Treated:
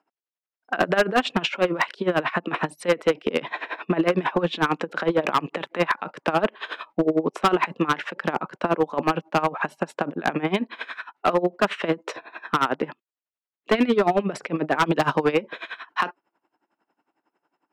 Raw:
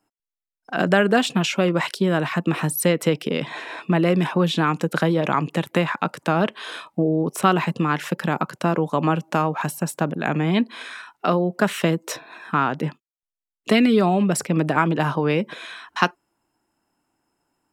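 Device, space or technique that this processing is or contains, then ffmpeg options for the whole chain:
helicopter radio: -filter_complex "[0:a]asettb=1/sr,asplit=3[a][b][c];[a]atrim=end=14.864[d];[b]atrim=start=14.86:end=15.32,asetpts=PTS-STARTPTS,afade=t=in:d=0.004:c=qsin,afade=t=out:st=0.456:d=0.004:c=qsin,bass=f=250:g=5,treble=f=4k:g=15[e];[c]atrim=start=15.316[f];[d][e]acrossfade=d=0.004:c1=hsin:c2=qsin[g];[g][f]acrossfade=d=0.004:c1=qsin:c2=hsin,highpass=320,lowpass=2.7k,aeval=exprs='val(0)*pow(10,-19*(0.5-0.5*cos(2*PI*11*n/s))/20)':c=same,asoftclip=type=hard:threshold=-20dB,volume=7.5dB"

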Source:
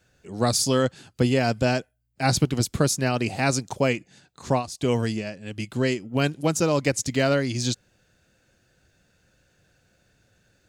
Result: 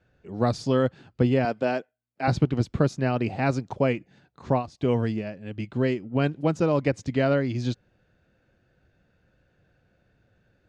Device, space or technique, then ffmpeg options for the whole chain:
phone in a pocket: -filter_complex "[0:a]asettb=1/sr,asplit=3[a][b][c];[a]atrim=end=1.454[d];[b]atrim=start=1.45:end=2.28,asetpts=PTS-STARTPTS,afade=t=in:d=0.004:c=qsin,afade=t=out:st=0.826:d=0.004:c=qsin,highpass=290[e];[c]atrim=start=2.276[f];[d][e]acrossfade=d=0.004:c1=hsin:c2=qsin[g];[g][f]acrossfade=d=0.004:c1=qsin:c2=hsin,lowpass=3.7k,highshelf=f=2k:g=-9"

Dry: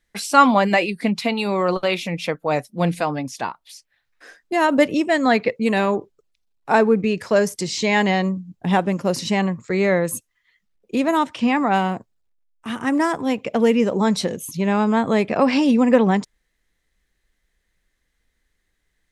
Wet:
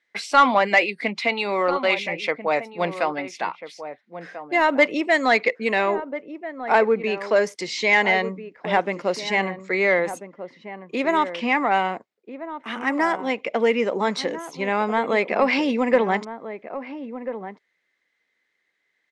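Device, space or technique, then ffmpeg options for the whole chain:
intercom: -filter_complex "[0:a]highpass=370,lowpass=4.7k,equalizer=f=2.1k:t=o:w=0.26:g=8.5,asoftclip=type=tanh:threshold=-5dB,asplit=2[a][b];[b]adelay=1341,volume=-11dB,highshelf=f=4k:g=-30.2[c];[a][c]amix=inputs=2:normalize=0,asettb=1/sr,asplit=3[d][e][f];[d]atrim=end=5.014[g];[e]atrim=start=5.01:end=5.59,asetpts=PTS-STARTPTS,afade=t=in:d=0.004:c=qsin,afade=t=out:st=0.576:d=0.004:c=qsin,adynamicequalizer=threshold=0.0141:dfrequency=4500:dqfactor=0.7:tfrequency=4500:tqfactor=0.7:attack=5:release=100:ratio=0.375:range=4:mode=boostabove:tftype=highshelf[h];[f]atrim=start=5.586[i];[g][h]acrossfade=d=0.004:c1=hsin:c2=qsin[j];[j][i]acrossfade=d=0.004:c1=qsin:c2=hsin"

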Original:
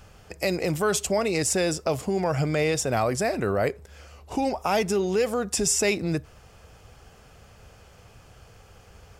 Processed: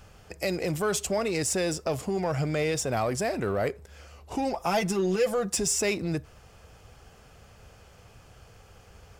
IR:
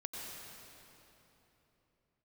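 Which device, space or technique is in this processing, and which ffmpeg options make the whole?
parallel distortion: -filter_complex "[0:a]asplit=2[a][b];[b]asoftclip=type=hard:threshold=-28dB,volume=-6.5dB[c];[a][c]amix=inputs=2:normalize=0,asettb=1/sr,asplit=3[d][e][f];[d]atrim=end=4.534[g];[e]atrim=start=4.53:end=5.57,asetpts=PTS-STARTPTS,afade=t=in:d=0.004:c=qsin,afade=t=out:st=1.036:d=0.004:c=qsin,aecho=1:1:5.9:0.74,atrim=end_sample=45864[h];[f]atrim=start=5.566[i];[g][h]acrossfade=d=0.004:c1=hsin:c2=qsin[j];[j][i]acrossfade=d=0.004:c1=qsin:c2=hsin,volume=-5dB"

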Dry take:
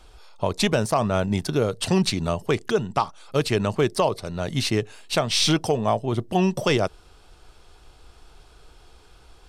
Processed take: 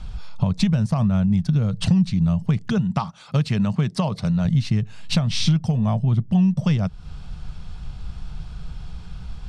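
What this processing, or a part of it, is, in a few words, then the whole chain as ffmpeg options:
jukebox: -filter_complex "[0:a]asettb=1/sr,asplit=3[a][b][c];[a]atrim=end=2.784[d];[b]atrim=start=2.78:end=4.45,asetpts=PTS-STARTPTS,afade=t=in:d=0.004:c=qsin,afade=t=out:st=1.666:d=0.004:c=qsin,highpass=f=230:p=1[e];[c]atrim=start=4.446[f];[d][e]acrossfade=d=0.004:c1=hsin:c2=qsin[g];[g][f]acrossfade=d=0.004:c1=qsin:c2=hsin,lowpass=6.5k,lowshelf=f=250:t=q:w=3:g=12.5,acompressor=threshold=-25dB:ratio=4,volume=5.5dB"

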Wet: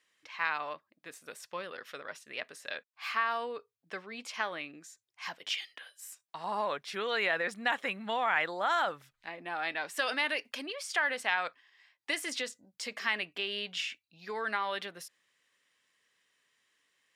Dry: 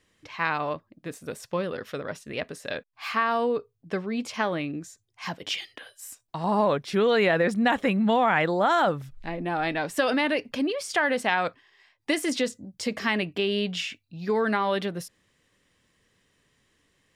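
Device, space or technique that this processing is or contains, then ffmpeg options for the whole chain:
filter by subtraction: -filter_complex "[0:a]asettb=1/sr,asplit=3[a][b][c];[a]atrim=end=9.994[d];[b]atrim=start=9.99:end=10.66,asetpts=PTS-STARTPTS,afade=t=in:d=0.004:c=qsin,afade=t=out:st=0.666:d=0.004:c=qsin,highshelf=f=5.2k:g=6.5[e];[c]atrim=start=10.656[f];[d][e]acrossfade=d=0.004:c1=hsin:c2=qsin[g];[g][f]acrossfade=d=0.004:c1=qsin:c2=hsin,asplit=2[h][i];[i]lowpass=1.7k,volume=-1[j];[h][j]amix=inputs=2:normalize=0,volume=-5.5dB"

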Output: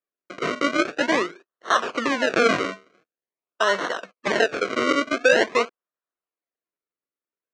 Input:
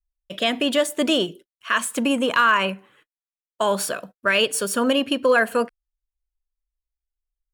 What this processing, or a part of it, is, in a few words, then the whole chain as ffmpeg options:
circuit-bent sampling toy: -af "acrusher=samples=35:mix=1:aa=0.000001:lfo=1:lforange=35:lforate=0.46,highpass=500,equalizer=f=570:t=q:w=4:g=-4,equalizer=f=830:t=q:w=4:g=-10,equalizer=f=3.4k:t=q:w=4:g=-8,equalizer=f=4.9k:t=q:w=4:g=-8,lowpass=f=5.3k:w=0.5412,lowpass=f=5.3k:w=1.3066,volume=5.5dB"

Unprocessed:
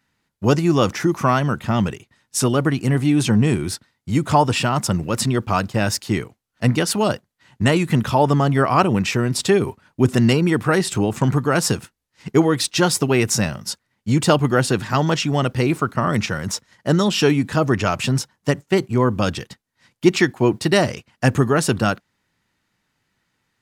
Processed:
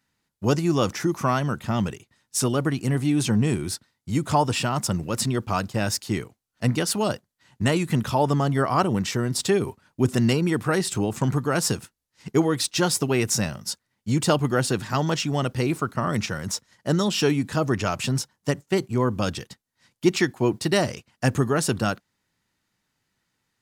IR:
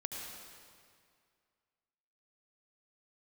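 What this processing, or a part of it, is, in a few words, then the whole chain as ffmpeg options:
exciter from parts: -filter_complex "[0:a]asettb=1/sr,asplit=3[a][b][c];[a]atrim=end=8.514[d];[b]atrim=start=8.51:end=9.39,asetpts=PTS-STARTPTS,afade=t=in:d=0.004:c=qsin,afade=t=out:st=0.876:d=0.004:c=qsin,bandreject=f=2.5k:w=6.6[e];[c]atrim=start=9.386[f];[d][e]acrossfade=d=0.004:c1=hsin:c2=qsin[g];[g][f]acrossfade=d=0.004:c1=qsin:c2=hsin,asplit=2[h][i];[i]highpass=3.4k,asoftclip=type=tanh:threshold=-22.5dB,volume=-4dB[j];[h][j]amix=inputs=2:normalize=0,volume=-5dB"

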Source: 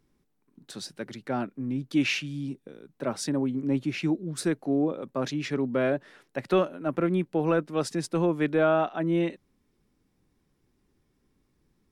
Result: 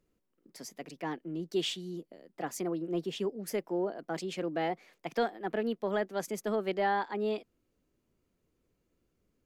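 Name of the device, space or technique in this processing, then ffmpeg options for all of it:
nightcore: -af "asetrate=55566,aresample=44100,volume=-6.5dB"

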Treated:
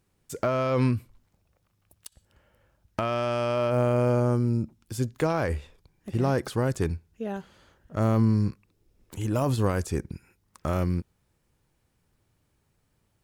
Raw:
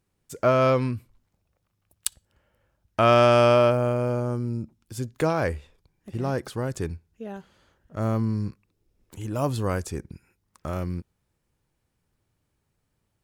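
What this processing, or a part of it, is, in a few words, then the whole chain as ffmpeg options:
de-esser from a sidechain: -filter_complex "[0:a]asplit=2[a][b];[b]highpass=f=5.3k:p=1,apad=whole_len=583507[c];[a][c]sidechaincompress=threshold=-37dB:ratio=12:attack=0.57:release=74,volume=4dB"

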